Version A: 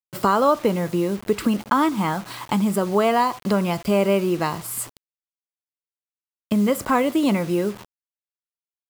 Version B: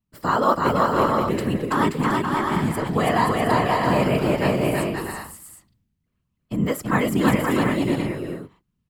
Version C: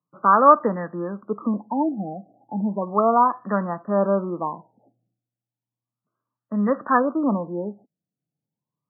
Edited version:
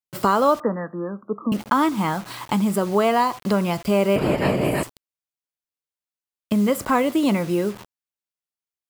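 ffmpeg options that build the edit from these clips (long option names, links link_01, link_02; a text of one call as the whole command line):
ffmpeg -i take0.wav -i take1.wav -i take2.wav -filter_complex "[0:a]asplit=3[link_01][link_02][link_03];[link_01]atrim=end=0.602[link_04];[2:a]atrim=start=0.598:end=1.522[link_05];[link_02]atrim=start=1.518:end=4.162[link_06];[1:a]atrim=start=4.158:end=4.832[link_07];[link_03]atrim=start=4.828[link_08];[link_04][link_05]acrossfade=duration=0.004:curve1=hsin:curve2=hsin[link_09];[link_09][link_06]acrossfade=duration=0.004:curve1=hsin:curve2=hsin[link_10];[link_10][link_07]acrossfade=duration=0.004:curve1=hsin:curve2=hsin[link_11];[link_11][link_08]acrossfade=duration=0.004:curve1=hsin:curve2=hsin" out.wav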